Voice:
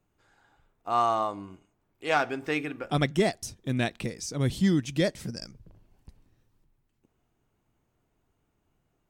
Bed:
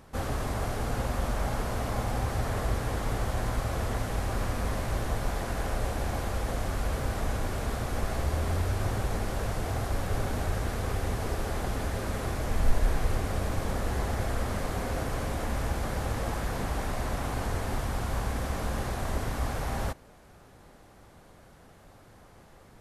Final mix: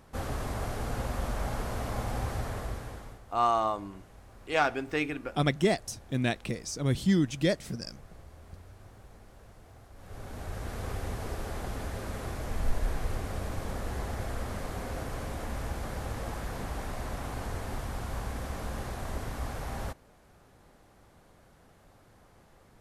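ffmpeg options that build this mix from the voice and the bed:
ffmpeg -i stem1.wav -i stem2.wav -filter_complex "[0:a]adelay=2450,volume=-1dB[link_01];[1:a]volume=14.5dB,afade=type=out:start_time=2.28:duration=0.93:silence=0.105925,afade=type=in:start_time=9.95:duration=0.89:silence=0.133352[link_02];[link_01][link_02]amix=inputs=2:normalize=0" out.wav

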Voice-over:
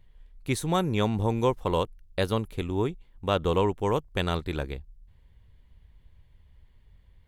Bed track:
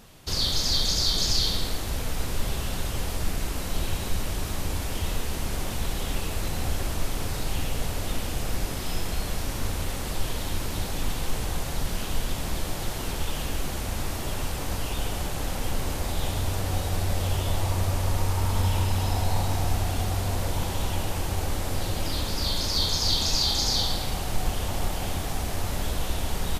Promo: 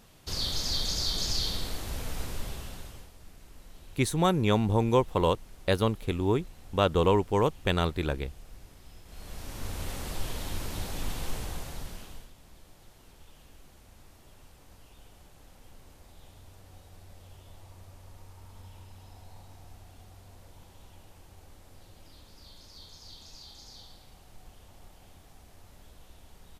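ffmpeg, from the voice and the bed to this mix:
ffmpeg -i stem1.wav -i stem2.wav -filter_complex "[0:a]adelay=3500,volume=1dB[link_01];[1:a]volume=12dB,afade=type=out:start_time=2.19:duration=0.92:silence=0.133352,afade=type=in:start_time=9.05:duration=0.85:silence=0.125893,afade=type=out:start_time=11.28:duration=1.03:silence=0.105925[link_02];[link_01][link_02]amix=inputs=2:normalize=0" out.wav

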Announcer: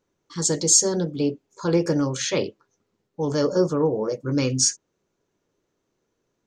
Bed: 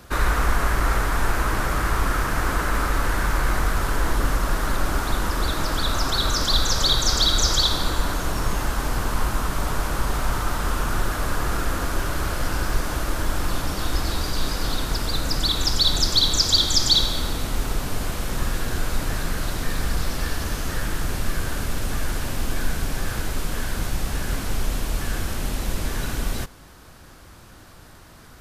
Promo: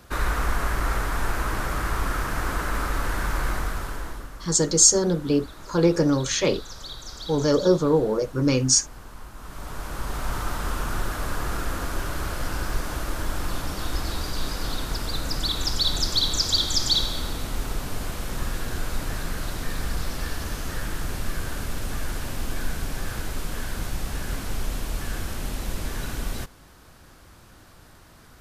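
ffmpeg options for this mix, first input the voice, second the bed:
ffmpeg -i stem1.wav -i stem2.wav -filter_complex "[0:a]adelay=4100,volume=1.5dB[link_01];[1:a]volume=10.5dB,afade=type=out:start_time=3.45:duration=0.84:silence=0.188365,afade=type=in:start_time=9.35:duration=1.05:silence=0.188365[link_02];[link_01][link_02]amix=inputs=2:normalize=0" out.wav

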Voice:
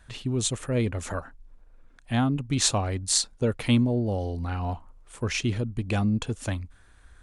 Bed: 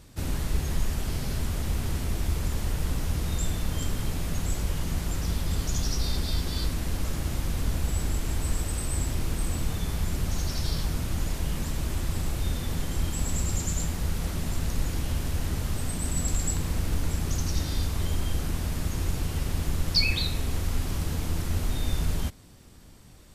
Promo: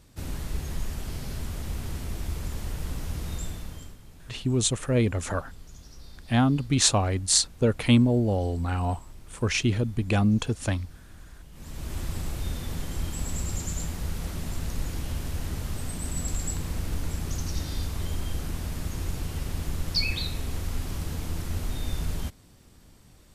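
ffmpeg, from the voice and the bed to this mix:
ffmpeg -i stem1.wav -i stem2.wav -filter_complex "[0:a]adelay=4200,volume=2.5dB[link_01];[1:a]volume=12.5dB,afade=type=out:start_time=3.34:duration=0.64:silence=0.16788,afade=type=in:start_time=11.52:duration=0.48:silence=0.141254[link_02];[link_01][link_02]amix=inputs=2:normalize=0" out.wav

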